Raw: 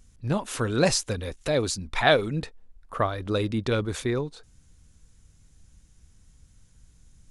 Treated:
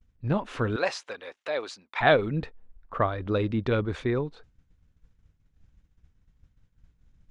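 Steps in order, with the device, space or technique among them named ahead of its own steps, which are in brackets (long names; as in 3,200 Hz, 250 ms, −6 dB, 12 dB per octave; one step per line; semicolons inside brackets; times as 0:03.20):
0:00.76–0:02.01: high-pass filter 670 Hz 12 dB per octave
hearing-loss simulation (low-pass filter 2,700 Hz 12 dB per octave; downward expander −47 dBFS)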